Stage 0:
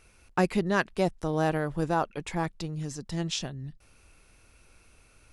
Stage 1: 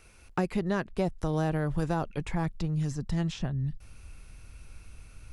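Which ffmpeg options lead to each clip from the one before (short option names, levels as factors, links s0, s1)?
-filter_complex "[0:a]asubboost=boost=3.5:cutoff=200,acrossover=split=580|2000[s0][s1][s2];[s0]acompressor=threshold=0.0355:ratio=4[s3];[s1]acompressor=threshold=0.0126:ratio=4[s4];[s2]acompressor=threshold=0.00316:ratio=4[s5];[s3][s4][s5]amix=inputs=3:normalize=0,volume=1.33"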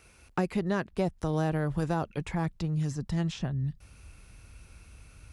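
-af "highpass=43"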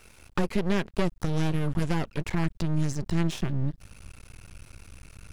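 -af "aeval=exprs='max(val(0),0)':c=same,volume=2.51"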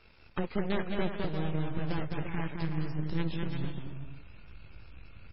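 -af "aeval=exprs='0.266*(cos(1*acos(clip(val(0)/0.266,-1,1)))-cos(1*PI/2))+0.0211*(cos(8*acos(clip(val(0)/0.266,-1,1)))-cos(8*PI/2))':c=same,aecho=1:1:210|346.5|435.2|492.9|530.4:0.631|0.398|0.251|0.158|0.1,volume=0.562" -ar 16000 -c:a libmp3lame -b:a 16k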